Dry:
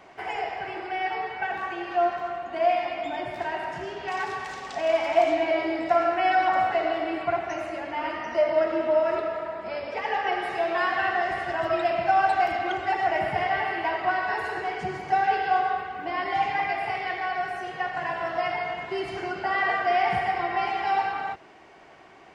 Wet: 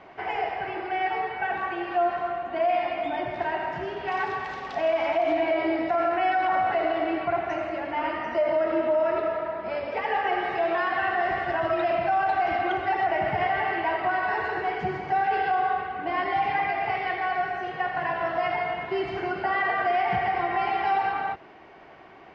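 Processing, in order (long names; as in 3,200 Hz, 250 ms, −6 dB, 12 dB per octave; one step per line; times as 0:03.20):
brickwall limiter −18.5 dBFS, peak gain reduction 9.5 dB
high-frequency loss of the air 200 metres
level +3 dB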